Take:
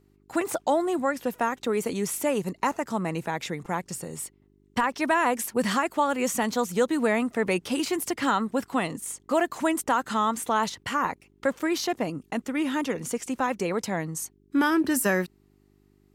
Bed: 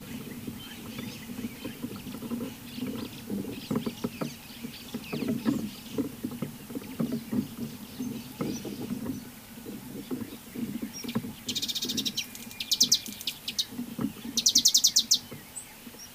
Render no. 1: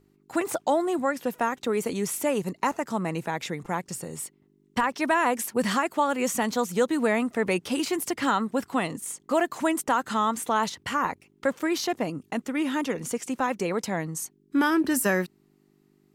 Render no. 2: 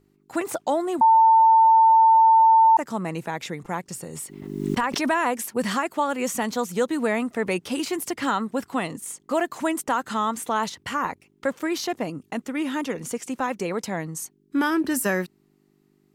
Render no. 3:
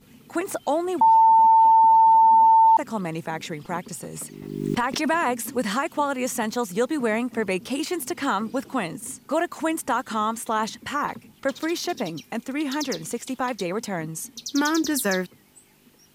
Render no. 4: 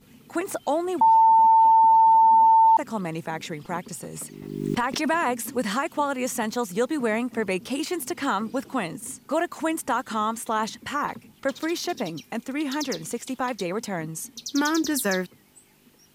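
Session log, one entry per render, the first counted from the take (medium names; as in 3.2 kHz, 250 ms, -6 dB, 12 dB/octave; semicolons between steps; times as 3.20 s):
de-hum 50 Hz, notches 2
1.01–2.77 s: bleep 896 Hz -11.5 dBFS; 4.12–5.30 s: swell ahead of each attack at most 47 dB/s
add bed -11.5 dB
trim -1 dB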